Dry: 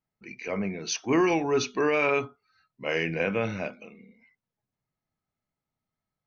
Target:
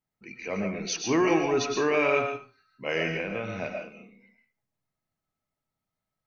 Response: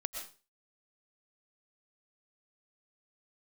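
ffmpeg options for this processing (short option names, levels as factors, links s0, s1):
-filter_complex "[0:a]asettb=1/sr,asplit=3[s0][s1][s2];[s0]atrim=end=3.074[s3];[s1]atrim=start=3.07:end=3.59,asetpts=PTS-STARTPTS,afade=t=in:d=0.004:c=qsin,afade=t=out:st=0.516:d=0.004:c=qsin,acompressor=threshold=0.0398:ratio=6[s4];[s2]atrim=start=3.586[s5];[s3][s4]acrossfade=d=0.004:c1=hsin:c2=qsin[s6];[s6][s5]acrossfade=d=0.004:c1=qsin:c2=hsin[s7];[1:a]atrim=start_sample=2205[s8];[s7][s8]afir=irnorm=-1:irlink=0"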